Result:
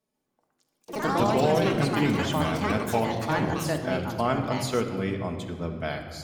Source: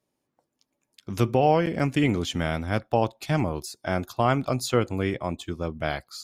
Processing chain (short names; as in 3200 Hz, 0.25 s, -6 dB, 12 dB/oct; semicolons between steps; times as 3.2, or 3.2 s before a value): shoebox room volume 3900 m³, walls mixed, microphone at 1.5 m; echoes that change speed 0.143 s, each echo +5 st, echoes 3; ending taper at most 260 dB/s; gain -4.5 dB